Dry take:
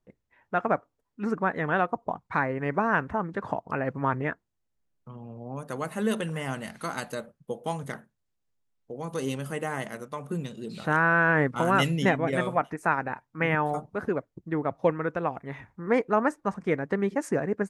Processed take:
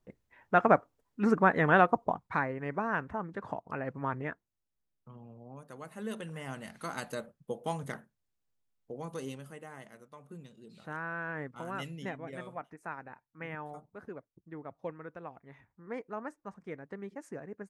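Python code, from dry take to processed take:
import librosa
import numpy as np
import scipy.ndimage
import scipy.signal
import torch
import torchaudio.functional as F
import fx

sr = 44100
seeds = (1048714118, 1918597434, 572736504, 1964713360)

y = fx.gain(x, sr, db=fx.line((1.95, 2.5), (2.58, -7.5), (5.17, -7.5), (5.75, -14.0), (7.18, -3.5), (8.92, -3.5), (9.61, -16.0)))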